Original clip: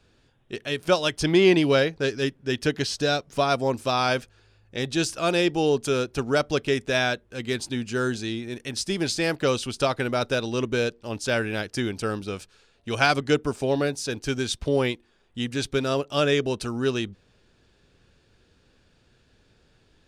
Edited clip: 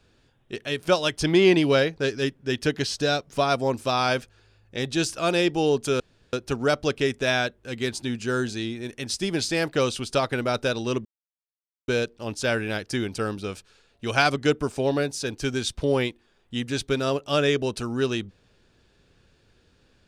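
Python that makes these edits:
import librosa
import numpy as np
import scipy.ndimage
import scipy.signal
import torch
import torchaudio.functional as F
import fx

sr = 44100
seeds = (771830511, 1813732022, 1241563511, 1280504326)

y = fx.edit(x, sr, fx.insert_room_tone(at_s=6.0, length_s=0.33),
    fx.insert_silence(at_s=10.72, length_s=0.83), tone=tone)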